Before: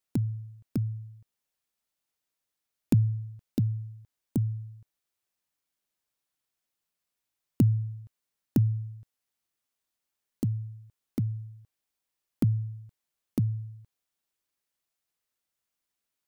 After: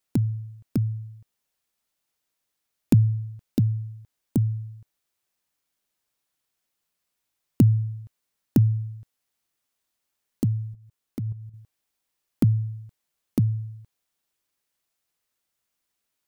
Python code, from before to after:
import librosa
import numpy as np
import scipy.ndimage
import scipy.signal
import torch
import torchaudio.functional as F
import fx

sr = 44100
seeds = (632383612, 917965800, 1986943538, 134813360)

y = fx.level_steps(x, sr, step_db=11, at=(10.73, 11.54))
y = y * 10.0 ** (5.0 / 20.0)